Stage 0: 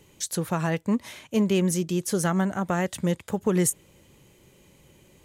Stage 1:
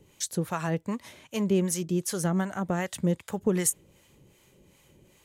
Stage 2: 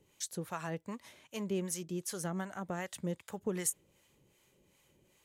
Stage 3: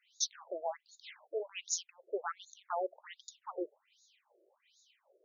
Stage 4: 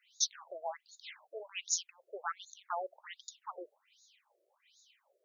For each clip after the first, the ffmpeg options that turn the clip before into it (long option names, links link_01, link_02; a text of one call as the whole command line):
ffmpeg -i in.wav -filter_complex "[0:a]acrossover=split=670[link_01][link_02];[link_01]aeval=exprs='val(0)*(1-0.7/2+0.7/2*cos(2*PI*2.6*n/s))':channel_layout=same[link_03];[link_02]aeval=exprs='val(0)*(1-0.7/2-0.7/2*cos(2*PI*2.6*n/s))':channel_layout=same[link_04];[link_03][link_04]amix=inputs=2:normalize=0" out.wav
ffmpeg -i in.wav -af "lowshelf=frequency=330:gain=-5.5,volume=-7.5dB" out.wav
ffmpeg -i in.wav -af "afftfilt=real='re*between(b*sr/1024,460*pow(5100/460,0.5+0.5*sin(2*PI*1.3*pts/sr))/1.41,460*pow(5100/460,0.5+0.5*sin(2*PI*1.3*pts/sr))*1.41)':imag='im*between(b*sr/1024,460*pow(5100/460,0.5+0.5*sin(2*PI*1.3*pts/sr))/1.41,460*pow(5100/460,0.5+0.5*sin(2*PI*1.3*pts/sr))*1.41)':win_size=1024:overlap=0.75,volume=9.5dB" out.wav
ffmpeg -i in.wav -af "highpass=820,volume=2.5dB" out.wav